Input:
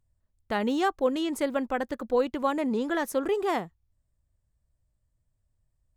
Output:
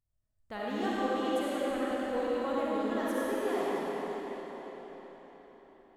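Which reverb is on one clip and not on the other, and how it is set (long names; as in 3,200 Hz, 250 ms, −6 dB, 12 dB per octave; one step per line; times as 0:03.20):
comb and all-pass reverb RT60 4.9 s, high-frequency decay 0.9×, pre-delay 20 ms, DRR −8.5 dB
level −13 dB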